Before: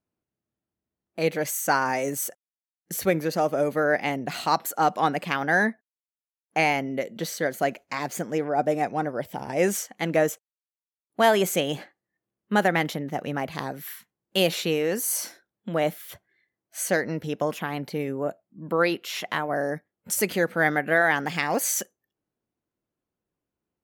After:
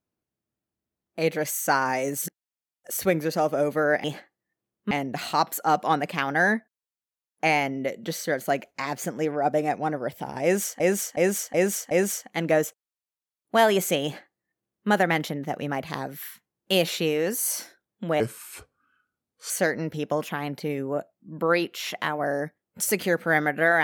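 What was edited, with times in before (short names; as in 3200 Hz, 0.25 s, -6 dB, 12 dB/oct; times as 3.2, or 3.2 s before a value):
2.22–2.97 reverse
9.56–9.93 loop, 5 plays
11.68–12.55 copy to 4.04
15.85–16.8 speed 73%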